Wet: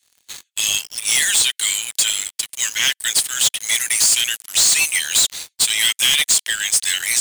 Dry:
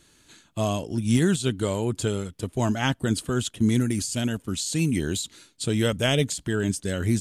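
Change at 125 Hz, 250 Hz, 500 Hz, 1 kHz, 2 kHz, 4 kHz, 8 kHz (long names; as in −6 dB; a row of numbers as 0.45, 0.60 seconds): below −20 dB, below −20 dB, −16.0 dB, −2.0 dB, +12.0 dB, +15.5 dB, +18.0 dB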